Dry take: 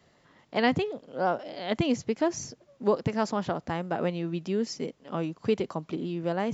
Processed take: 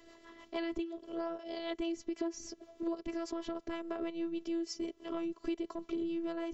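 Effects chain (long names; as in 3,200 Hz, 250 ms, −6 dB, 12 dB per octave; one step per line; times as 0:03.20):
transient designer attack −6 dB, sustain −1 dB
rotating-speaker cabinet horn 6.3 Hz
phases set to zero 333 Hz
downward compressor 6 to 1, threshold −46 dBFS, peak gain reduction 19 dB
hollow resonant body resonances 400/1,100/3,100 Hz, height 8 dB, ringing for 35 ms
level +9 dB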